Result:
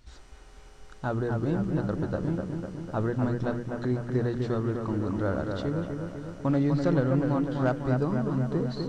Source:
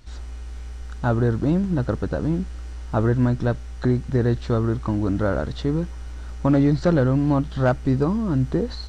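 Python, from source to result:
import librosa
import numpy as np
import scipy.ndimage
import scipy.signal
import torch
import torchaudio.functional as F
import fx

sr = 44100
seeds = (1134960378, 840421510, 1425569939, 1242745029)

p1 = fx.hum_notches(x, sr, base_hz=60, count=5)
p2 = p1 + fx.echo_bbd(p1, sr, ms=250, stages=4096, feedback_pct=62, wet_db=-5, dry=0)
y = p2 * 10.0 ** (-7.0 / 20.0)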